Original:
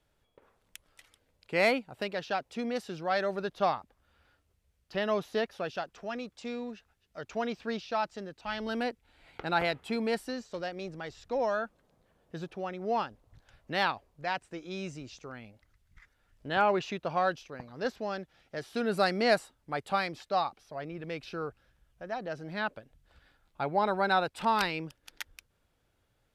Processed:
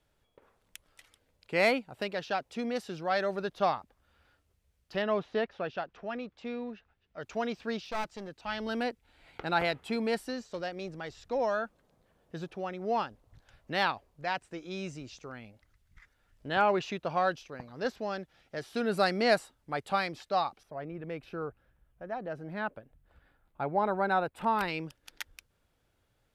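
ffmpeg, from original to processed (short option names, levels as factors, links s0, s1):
-filter_complex "[0:a]asettb=1/sr,asplit=3[s0][s1][s2];[s0]atrim=end=5.024[s3];[s1]atrim=start=5.02:end=7.21,asetpts=PTS-STARTPTS,afade=t=in:d=0.004:c=qsin,afade=t=out:st=2.186:d=0.004:c=qsin,lowpass=3100[s4];[s2]atrim=start=7.206[s5];[s3][s4]acrossfade=d=0.004:c1=hsin:c2=qsin[s6];[s6][s5]acrossfade=d=0.004:c1=qsin:c2=hsin,asettb=1/sr,asplit=3[s7][s8][s9];[s7]atrim=end=7.844[s10];[s8]atrim=start=7.84:end=8.28,asetpts=PTS-STARTPTS,afade=t=in:d=0.004:c=qsin,afade=t=out:st=0.436:d=0.004:c=qsin,aeval=exprs='clip(val(0),-1,0.00841)':c=same[s11];[s9]atrim=start=8.276[s12];[s10][s11]acrossfade=d=0.004:c1=hsin:c2=qsin[s13];[s13][s12]acrossfade=d=0.004:c1=qsin:c2=hsin,asettb=1/sr,asplit=3[s14][s15][s16];[s14]atrim=end=20.634[s17];[s15]atrim=start=20.63:end=24.68,asetpts=PTS-STARTPTS,afade=t=in:d=0.004:c=qsin,afade=t=out:st=4.046:d=0.004:c=qsin,equalizer=f=5100:t=o:w=1.8:g=-13.5[s18];[s16]atrim=start=24.676[s19];[s17][s18]acrossfade=d=0.004:c1=hsin:c2=qsin[s20];[s20][s19]acrossfade=d=0.004:c1=qsin:c2=hsin"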